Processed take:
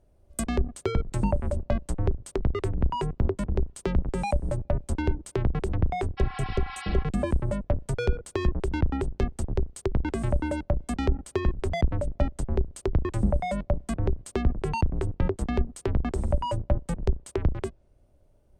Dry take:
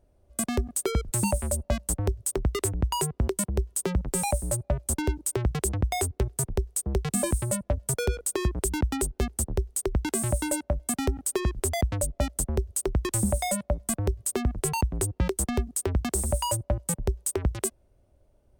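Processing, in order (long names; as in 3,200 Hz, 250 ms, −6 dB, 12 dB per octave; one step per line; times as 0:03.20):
sub-octave generator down 2 octaves, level 0 dB
healed spectral selection 0:06.20–0:07.01, 750–5,600 Hz after
treble cut that deepens with the level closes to 1,500 Hz, closed at −19.5 dBFS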